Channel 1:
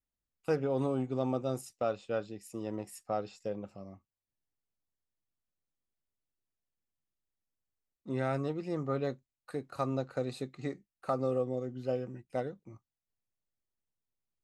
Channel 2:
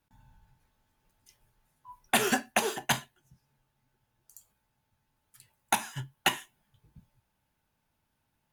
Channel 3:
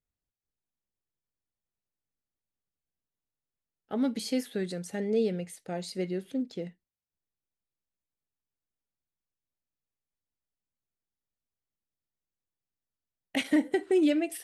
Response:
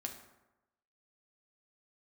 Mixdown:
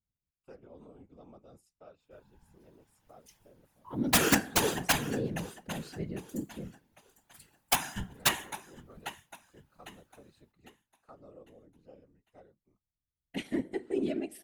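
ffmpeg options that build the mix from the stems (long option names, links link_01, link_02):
-filter_complex "[0:a]volume=-16dB[link_01];[1:a]dynaudnorm=framelen=170:gausssize=5:maxgain=7dB,adelay=2000,volume=-2dB,asplit=3[link_02][link_03][link_04];[link_03]volume=-6dB[link_05];[link_04]volume=-13dB[link_06];[2:a]bass=frequency=250:gain=12,treble=frequency=4000:gain=0,volume=-6dB,asplit=2[link_07][link_08];[link_08]volume=-12.5dB[link_09];[3:a]atrim=start_sample=2205[link_10];[link_05][link_09]amix=inputs=2:normalize=0[link_11];[link_11][link_10]afir=irnorm=-1:irlink=0[link_12];[link_06]aecho=0:1:802|1604|2406|3208|4010:1|0.34|0.116|0.0393|0.0134[link_13];[link_01][link_02][link_07][link_12][link_13]amix=inputs=5:normalize=0,aeval=exprs='(mod(2.51*val(0)+1,2)-1)/2.51':channel_layout=same,afftfilt=real='hypot(re,im)*cos(2*PI*random(0))':imag='hypot(re,im)*sin(2*PI*random(1))':win_size=512:overlap=0.75"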